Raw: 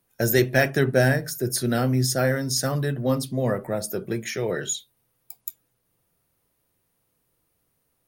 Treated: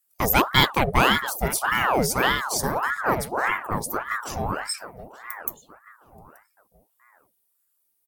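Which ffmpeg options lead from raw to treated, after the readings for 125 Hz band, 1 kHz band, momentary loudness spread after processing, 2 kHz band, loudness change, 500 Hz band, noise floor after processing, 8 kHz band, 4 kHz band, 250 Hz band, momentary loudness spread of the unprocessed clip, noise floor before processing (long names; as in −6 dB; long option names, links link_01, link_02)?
−6.5 dB, +11.0 dB, 13 LU, +4.0 dB, +0.5 dB, −4.0 dB, −72 dBFS, −1.0 dB, +6.0 dB, −3.5 dB, 10 LU, −73 dBFS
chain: -filter_complex "[0:a]afwtdn=0.0398,crystalizer=i=6.5:c=0,asplit=2[link_01][link_02];[link_02]adelay=879,lowpass=frequency=1500:poles=1,volume=-11.5dB,asplit=2[link_03][link_04];[link_04]adelay=879,lowpass=frequency=1500:poles=1,volume=0.33,asplit=2[link_05][link_06];[link_06]adelay=879,lowpass=frequency=1500:poles=1,volume=0.33[link_07];[link_03][link_05][link_07]amix=inputs=3:normalize=0[link_08];[link_01][link_08]amix=inputs=2:normalize=0,aeval=exprs='val(0)*sin(2*PI*930*n/s+930*0.7/1.7*sin(2*PI*1.7*n/s))':channel_layout=same,volume=1.5dB"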